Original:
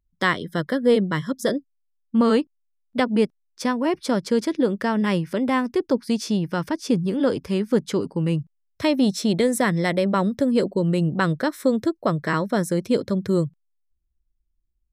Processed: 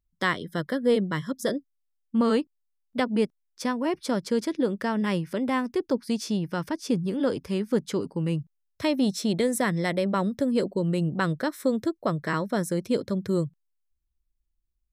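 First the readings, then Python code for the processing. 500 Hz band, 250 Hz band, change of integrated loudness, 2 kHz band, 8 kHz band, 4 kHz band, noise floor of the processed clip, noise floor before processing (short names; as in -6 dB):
-4.5 dB, -4.5 dB, -4.5 dB, -4.5 dB, -3.0 dB, -4.0 dB, -77 dBFS, -72 dBFS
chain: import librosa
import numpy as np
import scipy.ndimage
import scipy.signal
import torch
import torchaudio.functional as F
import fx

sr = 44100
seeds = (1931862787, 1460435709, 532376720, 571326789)

y = fx.high_shelf(x, sr, hz=8500.0, db=3.5)
y = y * librosa.db_to_amplitude(-4.5)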